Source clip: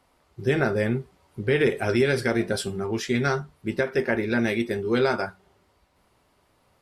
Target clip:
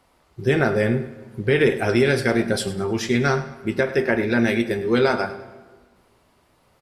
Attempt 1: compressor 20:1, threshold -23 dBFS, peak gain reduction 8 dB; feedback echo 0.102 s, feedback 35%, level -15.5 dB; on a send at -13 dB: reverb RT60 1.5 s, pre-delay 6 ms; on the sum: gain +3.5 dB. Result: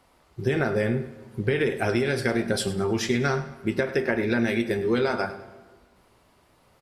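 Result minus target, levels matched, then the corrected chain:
compressor: peak gain reduction +8 dB
feedback echo 0.102 s, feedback 35%, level -15.5 dB; on a send at -13 dB: reverb RT60 1.5 s, pre-delay 6 ms; on the sum: gain +3.5 dB

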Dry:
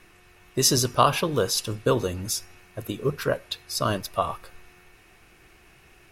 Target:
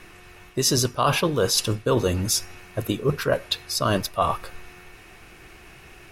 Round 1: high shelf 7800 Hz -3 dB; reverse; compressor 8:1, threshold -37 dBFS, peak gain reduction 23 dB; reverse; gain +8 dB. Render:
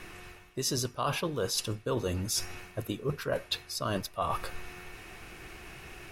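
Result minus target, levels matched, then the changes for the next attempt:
compressor: peak gain reduction +10 dB
change: compressor 8:1, threshold -25.5 dBFS, peak gain reduction 13 dB

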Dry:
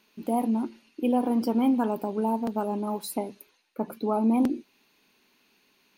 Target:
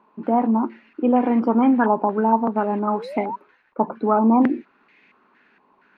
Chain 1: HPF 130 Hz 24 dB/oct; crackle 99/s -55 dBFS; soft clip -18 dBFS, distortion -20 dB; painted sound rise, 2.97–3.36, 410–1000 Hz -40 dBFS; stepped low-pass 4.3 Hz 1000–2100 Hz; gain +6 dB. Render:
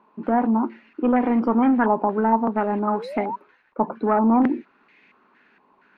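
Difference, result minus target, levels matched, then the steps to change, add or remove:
soft clip: distortion +19 dB
change: soft clip -7 dBFS, distortion -39 dB

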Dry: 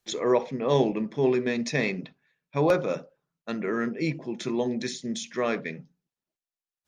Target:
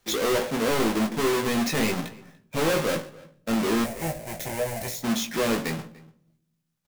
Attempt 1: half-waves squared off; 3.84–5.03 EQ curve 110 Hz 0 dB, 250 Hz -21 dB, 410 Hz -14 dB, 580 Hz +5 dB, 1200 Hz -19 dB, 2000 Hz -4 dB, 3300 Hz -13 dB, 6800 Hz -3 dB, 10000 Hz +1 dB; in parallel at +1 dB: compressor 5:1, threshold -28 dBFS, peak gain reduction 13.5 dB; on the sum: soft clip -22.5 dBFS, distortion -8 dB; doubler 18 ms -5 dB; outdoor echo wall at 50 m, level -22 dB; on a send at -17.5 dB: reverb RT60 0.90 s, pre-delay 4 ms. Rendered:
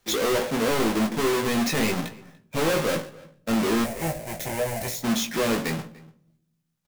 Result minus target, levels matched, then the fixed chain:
compressor: peak gain reduction -8 dB
half-waves squared off; 3.84–5.03 EQ curve 110 Hz 0 dB, 250 Hz -21 dB, 410 Hz -14 dB, 580 Hz +5 dB, 1200 Hz -19 dB, 2000 Hz -4 dB, 3300 Hz -13 dB, 6800 Hz -3 dB, 10000 Hz +1 dB; in parallel at +1 dB: compressor 5:1, threshold -38 dBFS, peak gain reduction 21.5 dB; on the sum: soft clip -22.5 dBFS, distortion -8 dB; doubler 18 ms -5 dB; outdoor echo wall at 50 m, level -22 dB; on a send at -17.5 dB: reverb RT60 0.90 s, pre-delay 4 ms

